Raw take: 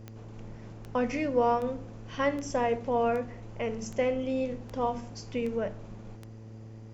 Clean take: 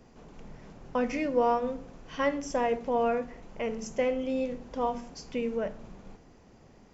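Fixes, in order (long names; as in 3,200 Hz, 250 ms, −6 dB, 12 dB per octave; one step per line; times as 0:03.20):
click removal
hum removal 110.5 Hz, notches 5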